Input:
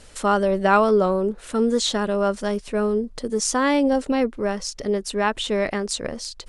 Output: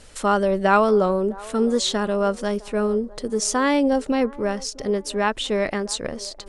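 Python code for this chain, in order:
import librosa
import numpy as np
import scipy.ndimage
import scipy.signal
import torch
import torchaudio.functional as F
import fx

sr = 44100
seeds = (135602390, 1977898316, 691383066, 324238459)

y = fx.echo_wet_bandpass(x, sr, ms=656, feedback_pct=39, hz=620.0, wet_db=-19.5)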